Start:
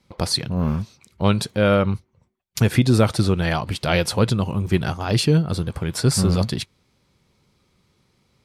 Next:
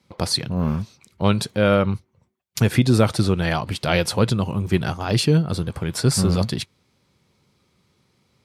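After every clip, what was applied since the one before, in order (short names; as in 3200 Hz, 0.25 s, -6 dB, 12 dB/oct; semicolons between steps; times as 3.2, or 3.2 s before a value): HPF 70 Hz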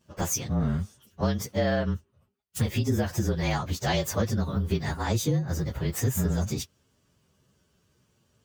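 inharmonic rescaling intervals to 113%; compressor 6:1, threshold -22 dBFS, peak gain reduction 9.5 dB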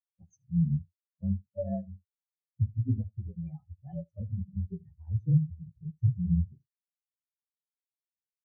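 echo 77 ms -7.5 dB; spectral expander 4:1; gain -3 dB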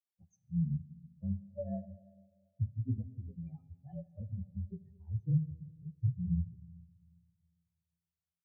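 digital reverb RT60 1.9 s, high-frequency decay 0.5×, pre-delay 10 ms, DRR 15.5 dB; gain -6 dB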